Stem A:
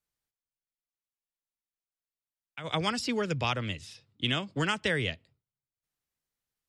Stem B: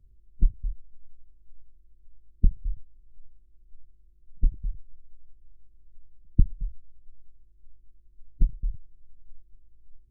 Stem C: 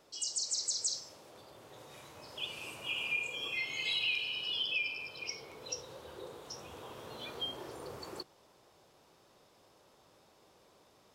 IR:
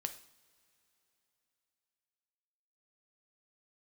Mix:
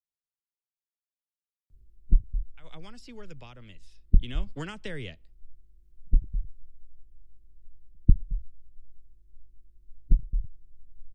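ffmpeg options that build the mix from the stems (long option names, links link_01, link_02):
-filter_complex "[0:a]acrossover=split=490[link_01][link_02];[link_02]acompressor=threshold=-33dB:ratio=4[link_03];[link_01][link_03]amix=inputs=2:normalize=0,volume=-6dB,afade=type=in:start_time=4.03:duration=0.38:silence=0.334965[link_04];[1:a]adelay=1700,volume=1dB[link_05];[link_04][link_05]amix=inputs=2:normalize=0"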